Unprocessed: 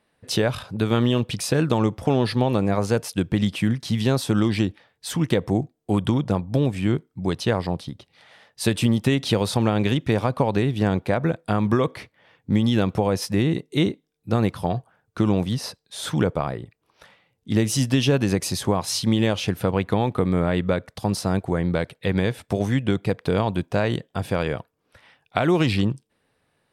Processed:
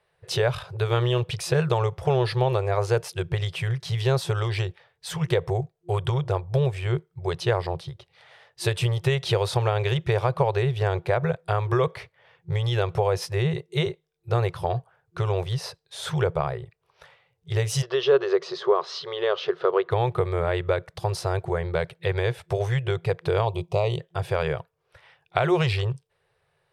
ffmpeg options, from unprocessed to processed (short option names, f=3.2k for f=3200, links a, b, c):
-filter_complex "[0:a]asplit=3[a][b][c];[a]afade=t=out:st=17.81:d=0.02[d];[b]highpass=f=240:w=0.5412,highpass=f=240:w=1.3066,equalizer=f=400:t=q:w=4:g=8,equalizer=f=820:t=q:w=4:g=-5,equalizer=f=1.2k:t=q:w=4:g=8,equalizer=f=2.4k:t=q:w=4:g=-9,lowpass=f=4.4k:w=0.5412,lowpass=f=4.4k:w=1.3066,afade=t=in:st=17.81:d=0.02,afade=t=out:st=19.9:d=0.02[e];[c]afade=t=in:st=19.9:d=0.02[f];[d][e][f]amix=inputs=3:normalize=0,asplit=3[g][h][i];[g]afade=t=out:st=23.45:d=0.02[j];[h]asuperstop=centerf=1600:order=4:qfactor=1.4,afade=t=in:st=23.45:d=0.02,afade=t=out:st=23.98:d=0.02[k];[i]afade=t=in:st=23.98:d=0.02[l];[j][k][l]amix=inputs=3:normalize=0,afftfilt=real='re*(1-between(b*sr/4096,170,350))':imag='im*(1-between(b*sr/4096,170,350))':win_size=4096:overlap=0.75,highshelf=f=5.6k:g=-7.5"